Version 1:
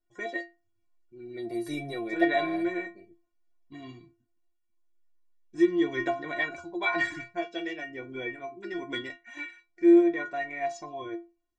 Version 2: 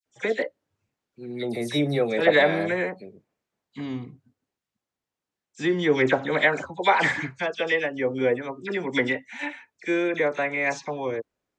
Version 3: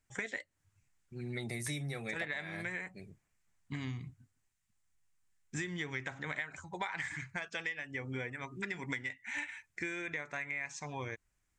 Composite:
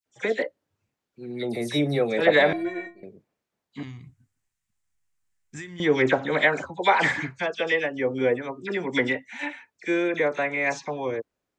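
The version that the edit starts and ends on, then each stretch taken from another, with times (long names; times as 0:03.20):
2
0:02.53–0:03.03: punch in from 1
0:03.83–0:05.80: punch in from 3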